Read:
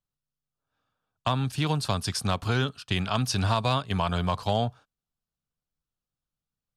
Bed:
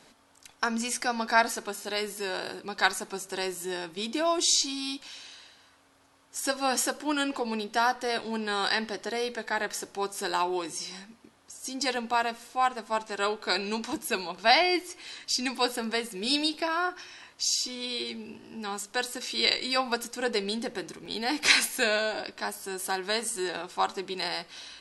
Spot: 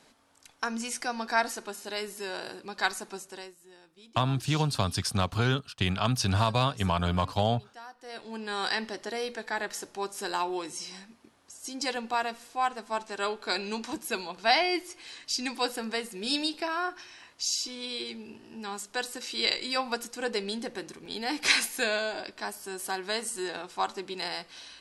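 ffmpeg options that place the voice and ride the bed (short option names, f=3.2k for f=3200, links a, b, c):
-filter_complex "[0:a]adelay=2900,volume=-0.5dB[a];[1:a]volume=15dB,afade=t=out:st=3.12:d=0.43:silence=0.133352,afade=t=in:st=7.97:d=0.66:silence=0.11885[b];[a][b]amix=inputs=2:normalize=0"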